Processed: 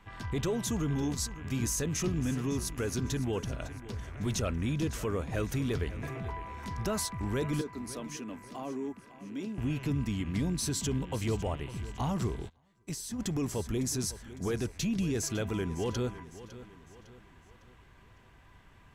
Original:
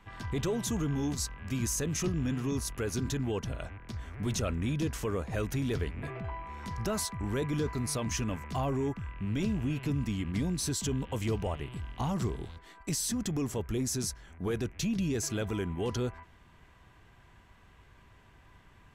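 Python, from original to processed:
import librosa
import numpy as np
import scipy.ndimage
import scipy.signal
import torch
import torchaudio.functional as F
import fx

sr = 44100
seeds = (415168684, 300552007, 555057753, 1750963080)

p1 = fx.ladder_highpass(x, sr, hz=210.0, resonance_pct=40, at=(7.61, 9.58))
p2 = p1 + fx.echo_feedback(p1, sr, ms=555, feedback_pct=42, wet_db=-15.5, dry=0)
y = fx.upward_expand(p2, sr, threshold_db=-43.0, expansion=2.5, at=(12.48, 13.18), fade=0.02)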